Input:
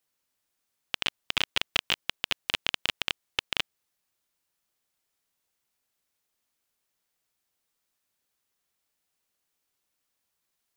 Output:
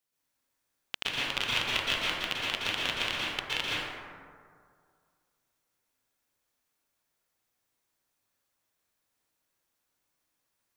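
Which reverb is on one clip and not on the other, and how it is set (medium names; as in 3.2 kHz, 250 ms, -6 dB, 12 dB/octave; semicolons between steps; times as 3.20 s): plate-style reverb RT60 2.1 s, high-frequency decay 0.35×, pre-delay 105 ms, DRR -7 dB; trim -5.5 dB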